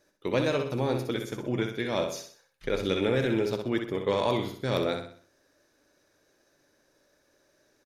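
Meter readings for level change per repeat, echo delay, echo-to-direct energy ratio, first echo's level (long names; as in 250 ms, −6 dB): −7.5 dB, 63 ms, −5.5 dB, −6.5 dB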